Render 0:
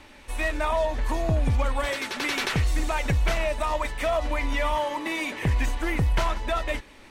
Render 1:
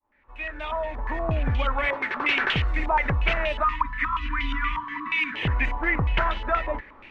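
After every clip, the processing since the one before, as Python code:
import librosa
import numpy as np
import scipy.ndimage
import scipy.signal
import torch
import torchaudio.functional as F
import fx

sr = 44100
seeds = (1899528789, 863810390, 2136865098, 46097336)

y = fx.fade_in_head(x, sr, length_s=1.46)
y = fx.spec_erase(y, sr, start_s=3.64, length_s=1.71, low_hz=320.0, high_hz=940.0)
y = fx.filter_held_lowpass(y, sr, hz=8.4, low_hz=990.0, high_hz=3100.0)
y = F.gain(torch.from_numpy(y), -1.5).numpy()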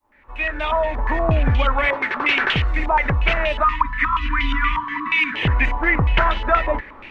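y = fx.rider(x, sr, range_db=4, speed_s=2.0)
y = F.gain(torch.from_numpy(y), 6.0).numpy()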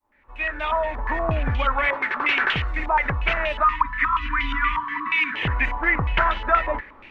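y = fx.dynamic_eq(x, sr, hz=1400.0, q=0.75, threshold_db=-32.0, ratio=4.0, max_db=6)
y = F.gain(torch.from_numpy(y), -6.5).numpy()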